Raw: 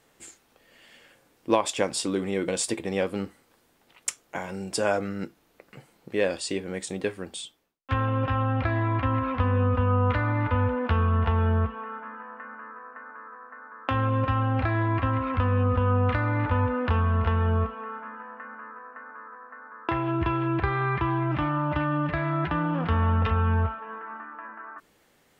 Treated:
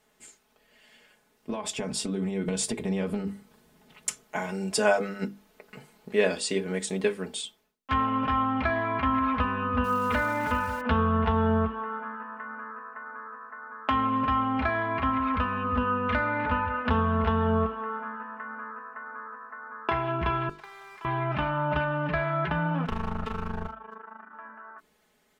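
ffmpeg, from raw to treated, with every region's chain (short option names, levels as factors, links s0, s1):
-filter_complex "[0:a]asettb=1/sr,asplit=3[s0][s1][s2];[s0]atrim=end=1.494[s3];[s1]atrim=start=1.49:end=4.24,asetpts=PTS-STARTPTS,afade=t=in:d=0.004:c=qsin,afade=t=out:st=2.746:d=0.004:c=qsin,equalizer=f=110:t=o:w=2.4:g=13.5,acompressor=threshold=0.0794:ratio=10:attack=3.2:release=140:knee=1:detection=peak[s4];[s2]atrim=start=4.236[s5];[s3][s4]acrossfade=d=0.004:c1=hsin:c2=qsin[s6];[s6][s5]acrossfade=d=0.004:c1=qsin:c2=hsin,asettb=1/sr,asplit=3[s7][s8][s9];[s7]atrim=end=9.844[s10];[s8]atrim=start=9.84:end=10.81,asetpts=PTS-STARTPTS,afade=t=in:d=0.004:c=qsin,afade=t=out:st=0.966:d=0.004:c=qsin,equalizer=f=92:w=2.4:g=-3.5,aeval=exprs='val(0)*gte(abs(val(0)),0.00944)':c=same[s11];[s9]atrim=start=10.806[s12];[s10][s11]acrossfade=d=0.004:c1=hsin:c2=qsin[s13];[s13][s12]acrossfade=d=0.004:c1=qsin:c2=hsin,asettb=1/sr,asplit=3[s14][s15][s16];[s14]atrim=end=20.494[s17];[s15]atrim=start=20.49:end=21.05,asetpts=PTS-STARTPTS,afade=t=in:d=0.004:c=qsin,afade=t=out:st=0.556:d=0.004:c=qsin,highpass=1400,equalizer=f=2700:t=o:w=2.9:g=-14.5,aeval=exprs='sgn(val(0))*max(abs(val(0))-0.0015,0)':c=same[s18];[s16]atrim=start=21.046[s19];[s17][s18]acrossfade=d=0.004:c1=hsin:c2=qsin[s20];[s20][s19]acrossfade=d=0.004:c1=qsin:c2=hsin,asettb=1/sr,asplit=3[s21][s22][s23];[s21]atrim=end=22.854[s24];[s22]atrim=start=22.85:end=24.33,asetpts=PTS-STARTPTS,afade=t=in:d=0.004:c=qsin,afade=t=out:st=1.476:d=0.004:c=qsin,aeval=exprs='clip(val(0),-1,0.0335)':c=same,tremolo=f=26:d=0.889[s25];[s23]atrim=start=24.326[s26];[s24][s25]acrossfade=d=0.004:c1=hsin:c2=qsin[s27];[s27][s26]acrossfade=d=0.004:c1=qsin:c2=hsin,bandreject=f=50:t=h:w=6,bandreject=f=100:t=h:w=6,bandreject=f=150:t=h:w=6,bandreject=f=200:t=h:w=6,bandreject=f=250:t=h:w=6,bandreject=f=300:t=h:w=6,bandreject=f=350:t=h:w=6,bandreject=f=400:t=h:w=6,bandreject=f=450:t=h:w=6,bandreject=f=500:t=h:w=6,dynaudnorm=f=340:g=17:m=2.11,aecho=1:1:4.7:0.81,volume=0.501"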